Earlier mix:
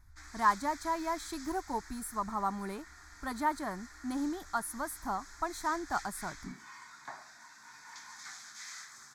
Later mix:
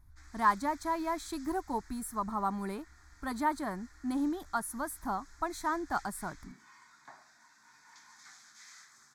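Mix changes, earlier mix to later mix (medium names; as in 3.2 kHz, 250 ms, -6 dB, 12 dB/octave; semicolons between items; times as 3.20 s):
background -8.0 dB; master: add peaking EQ 240 Hz +3 dB 1.7 oct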